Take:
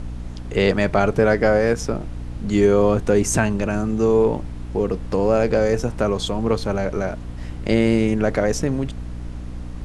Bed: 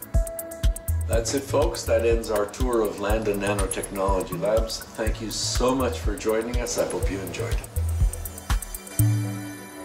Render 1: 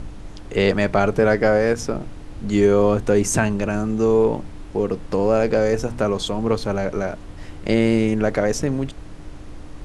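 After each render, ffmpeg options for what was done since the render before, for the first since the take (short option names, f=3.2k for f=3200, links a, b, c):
-af "bandreject=f=60:t=h:w=4,bandreject=f=120:t=h:w=4,bandreject=f=180:t=h:w=4,bandreject=f=240:t=h:w=4"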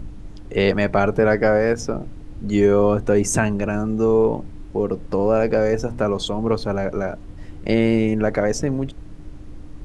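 -af "afftdn=nr=8:nf=-37"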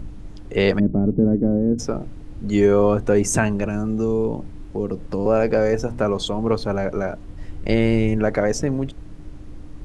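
-filter_complex "[0:a]asplit=3[a][b][c];[a]afade=t=out:st=0.78:d=0.02[d];[b]lowpass=f=260:t=q:w=2.7,afade=t=in:st=0.78:d=0.02,afade=t=out:st=1.78:d=0.02[e];[c]afade=t=in:st=1.78:d=0.02[f];[d][e][f]amix=inputs=3:normalize=0,asettb=1/sr,asplit=3[g][h][i];[g]atrim=end=3.654[j];[h]atrim=start=3.65:end=5.26,asetpts=PTS-STARTPTS,afade=t=in:d=0.004:c=qsin,afade=t=out:st=1.606:d=0.004:c=qsin,acrossover=split=360|3000[k][l][m];[l]acompressor=threshold=-32dB:ratio=2.5:attack=3.2:release=140:knee=2.83:detection=peak[n];[k][n][m]amix=inputs=3:normalize=0[o];[i]atrim=start=5.256[p];[j][o]acrossfade=d=0.004:c1=hsin:c2=qsin[q];[q][p]acrossfade=d=0.004:c1=qsin:c2=hsin,asettb=1/sr,asplit=3[r][s][t];[r]atrim=end=7.254[u];[s]atrim=start=7.25:end=8.17,asetpts=PTS-STARTPTS,afade=t=in:d=0.004:c=qsin,afade=t=out:st=0.916:d=0.004:c=qsin,asubboost=boost=8.5:cutoff=120[v];[t]atrim=start=8.166[w];[u][v]acrossfade=d=0.004:c1=hsin:c2=qsin[x];[x][w]acrossfade=d=0.004:c1=qsin:c2=hsin"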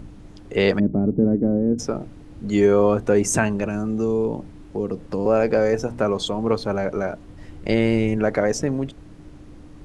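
-af "lowshelf=f=67:g=-11.5"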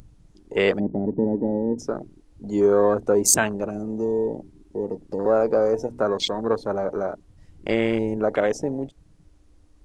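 -af "afwtdn=0.0398,bass=f=250:g=-9,treble=f=4k:g=9"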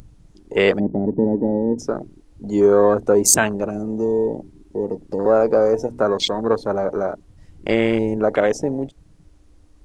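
-af "volume=4dB,alimiter=limit=-1dB:level=0:latency=1"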